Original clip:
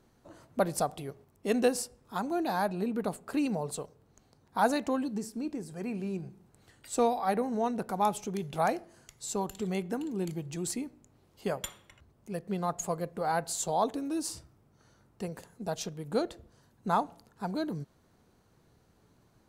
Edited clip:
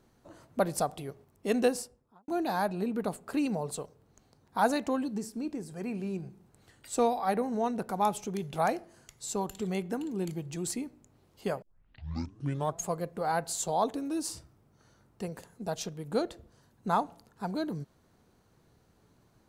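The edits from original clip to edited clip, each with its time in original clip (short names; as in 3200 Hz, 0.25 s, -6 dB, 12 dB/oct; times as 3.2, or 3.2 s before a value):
1.64–2.28 studio fade out
11.62 tape start 1.20 s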